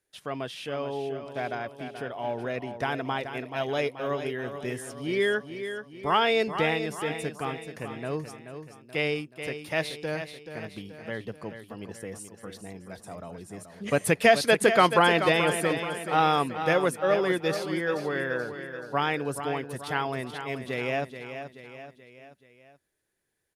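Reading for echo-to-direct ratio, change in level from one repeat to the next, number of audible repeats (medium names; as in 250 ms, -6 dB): -8.0 dB, -6.0 dB, 4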